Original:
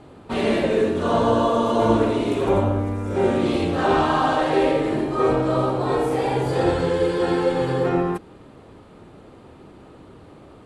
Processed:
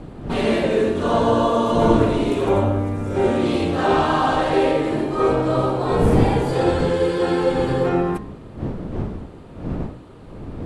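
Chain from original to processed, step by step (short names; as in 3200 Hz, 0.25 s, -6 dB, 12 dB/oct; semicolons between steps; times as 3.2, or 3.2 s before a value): wind noise 250 Hz -29 dBFS; de-hum 61.8 Hz, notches 38; gain +1.5 dB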